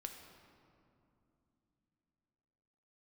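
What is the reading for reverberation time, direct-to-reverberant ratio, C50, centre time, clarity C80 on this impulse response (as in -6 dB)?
2.9 s, 3.5 dB, 5.5 dB, 48 ms, 6.5 dB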